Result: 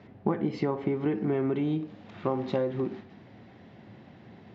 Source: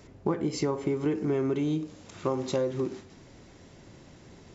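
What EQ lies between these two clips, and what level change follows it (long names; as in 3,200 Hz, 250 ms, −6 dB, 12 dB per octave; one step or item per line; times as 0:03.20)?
loudspeaker in its box 100–3,700 Hz, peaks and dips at 110 Hz +7 dB, 210 Hz +9 dB, 750 Hz +7 dB, 1,800 Hz +4 dB
−1.5 dB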